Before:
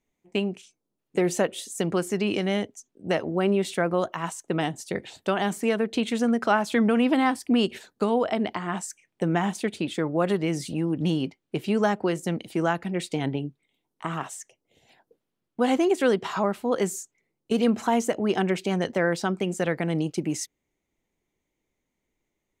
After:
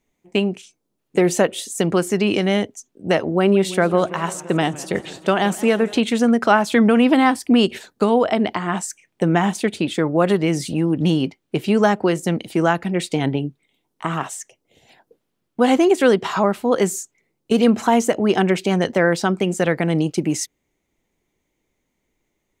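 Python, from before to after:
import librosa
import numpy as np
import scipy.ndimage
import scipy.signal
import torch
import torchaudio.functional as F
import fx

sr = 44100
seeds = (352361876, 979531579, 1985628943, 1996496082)

y = fx.echo_warbled(x, sr, ms=167, feedback_pct=71, rate_hz=2.8, cents=152, wet_db=-19, at=(3.35, 5.99))
y = y * 10.0 ** (7.0 / 20.0)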